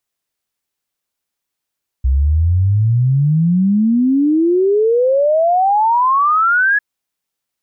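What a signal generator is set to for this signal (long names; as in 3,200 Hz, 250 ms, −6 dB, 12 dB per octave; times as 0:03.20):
exponential sine sweep 63 Hz → 1,700 Hz 4.75 s −10 dBFS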